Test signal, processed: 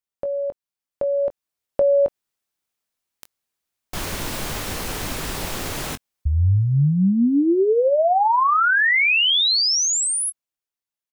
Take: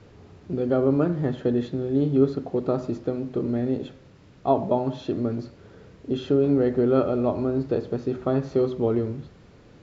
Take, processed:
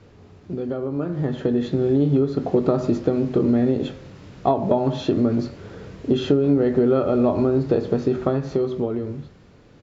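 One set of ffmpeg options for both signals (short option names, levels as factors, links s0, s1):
-filter_complex "[0:a]acompressor=threshold=0.0631:ratio=12,asplit=2[s0][s1];[s1]adelay=21,volume=0.251[s2];[s0][s2]amix=inputs=2:normalize=0,dynaudnorm=f=170:g=17:m=3.16"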